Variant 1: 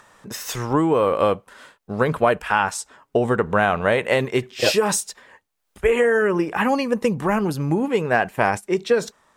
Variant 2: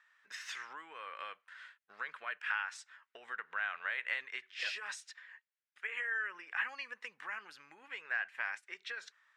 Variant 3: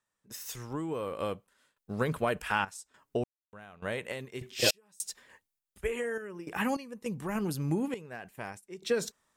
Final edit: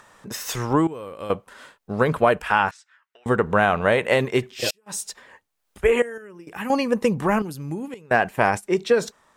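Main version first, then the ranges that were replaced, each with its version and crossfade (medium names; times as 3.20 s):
1
0.87–1.30 s: from 3
2.71–3.26 s: from 2
4.56–4.98 s: from 3, crossfade 0.24 s
6.02–6.70 s: from 3
7.42–8.11 s: from 3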